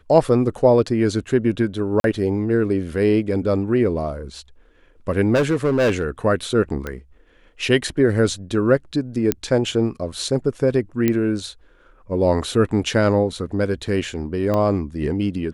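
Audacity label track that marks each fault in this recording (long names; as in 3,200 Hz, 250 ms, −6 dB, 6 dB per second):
2.000000	2.040000	drop-out 42 ms
5.340000	6.060000	clipping −14 dBFS
6.870000	6.870000	click −14 dBFS
9.320000	9.320000	click −3 dBFS
11.080000	11.080000	click −6 dBFS
14.540000	14.540000	click −11 dBFS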